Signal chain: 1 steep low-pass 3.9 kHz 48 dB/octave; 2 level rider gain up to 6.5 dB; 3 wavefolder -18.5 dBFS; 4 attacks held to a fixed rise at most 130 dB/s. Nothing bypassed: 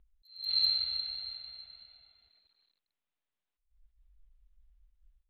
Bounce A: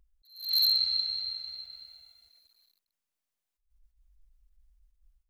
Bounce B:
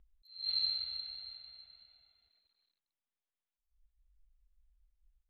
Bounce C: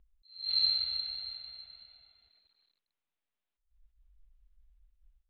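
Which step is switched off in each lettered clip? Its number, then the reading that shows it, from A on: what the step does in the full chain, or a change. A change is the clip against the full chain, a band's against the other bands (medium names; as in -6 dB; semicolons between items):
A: 1, crest factor change -4.0 dB; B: 2, loudness change -5.5 LU; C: 3, distortion -16 dB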